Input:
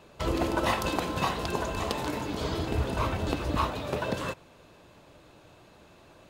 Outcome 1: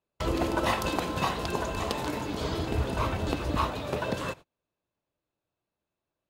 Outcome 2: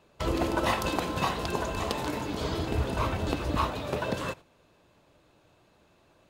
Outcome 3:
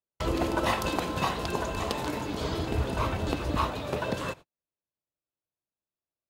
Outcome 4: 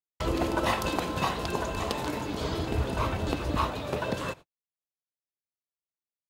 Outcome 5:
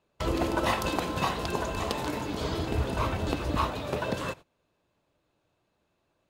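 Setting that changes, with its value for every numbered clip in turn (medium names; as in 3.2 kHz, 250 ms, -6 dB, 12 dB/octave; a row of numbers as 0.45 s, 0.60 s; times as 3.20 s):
gate, range: -33 dB, -8 dB, -46 dB, -58 dB, -20 dB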